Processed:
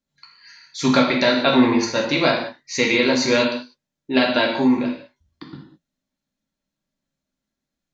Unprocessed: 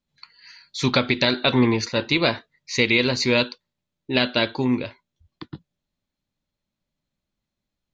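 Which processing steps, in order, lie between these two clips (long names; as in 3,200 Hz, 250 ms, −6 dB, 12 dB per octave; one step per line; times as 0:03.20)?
graphic EQ with 15 bands 100 Hz −6 dB, 250 Hz +8 dB, 630 Hz +4 dB, 1,600 Hz +5 dB, 6,300 Hz +7 dB
reverb whose tail is shaped and stops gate 230 ms falling, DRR −0.5 dB
dynamic equaliser 900 Hz, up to +6 dB, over −30 dBFS, Q 1.1
level −5.5 dB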